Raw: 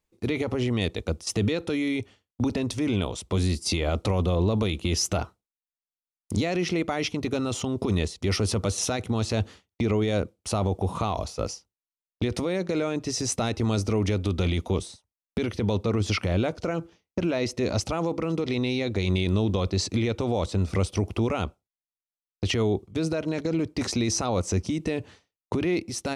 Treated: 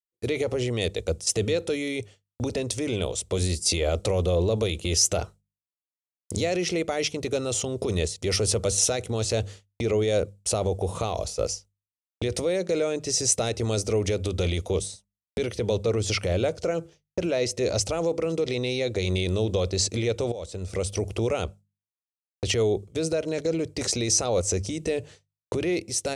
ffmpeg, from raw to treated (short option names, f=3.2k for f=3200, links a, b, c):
-filter_complex "[0:a]asplit=2[a][b];[a]atrim=end=20.32,asetpts=PTS-STARTPTS,afade=t=out:st=20.316:d=0.004:c=hsin:silence=0.199526[c];[b]atrim=start=20.32,asetpts=PTS-STARTPTS,afade=t=in:d=0.75:silence=0.199526[d];[c][d]concat=n=2:v=0:a=1,equalizer=f=250:t=o:w=1:g=-8,equalizer=f=500:t=o:w=1:g=8,equalizer=f=1k:t=o:w=1:g=-7,equalizer=f=8k:t=o:w=1:g=10,agate=range=-33dB:threshold=-43dB:ratio=3:detection=peak,bandreject=f=50:t=h:w=6,bandreject=f=100:t=h:w=6,bandreject=f=150:t=h:w=6,bandreject=f=200:t=h:w=6"